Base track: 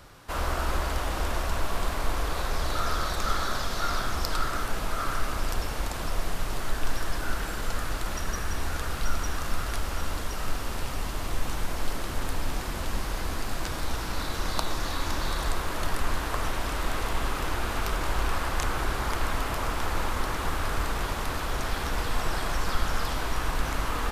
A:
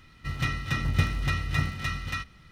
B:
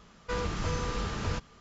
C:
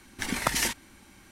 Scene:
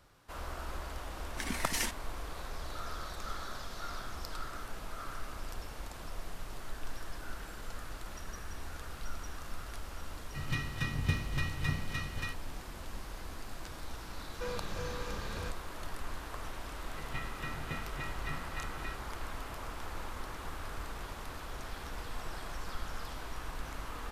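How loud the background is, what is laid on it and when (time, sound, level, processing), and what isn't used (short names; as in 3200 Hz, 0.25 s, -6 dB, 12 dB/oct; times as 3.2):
base track -13 dB
1.18 add C -7 dB
10.1 add A -5.5 dB + notch comb 680 Hz
14.12 add B -10.5 dB + small resonant body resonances 530/1600/2400 Hz, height 11 dB
16.72 add A -11 dB + BPF 170–3300 Hz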